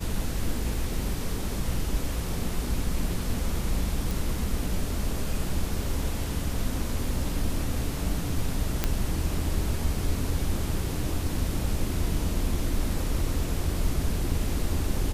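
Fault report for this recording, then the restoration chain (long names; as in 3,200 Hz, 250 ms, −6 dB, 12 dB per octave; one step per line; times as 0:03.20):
0:04.11: click
0:08.84: click −8 dBFS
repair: click removal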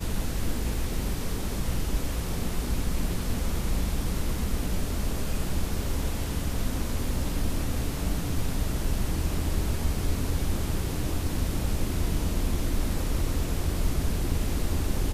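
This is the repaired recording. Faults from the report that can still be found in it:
none of them is left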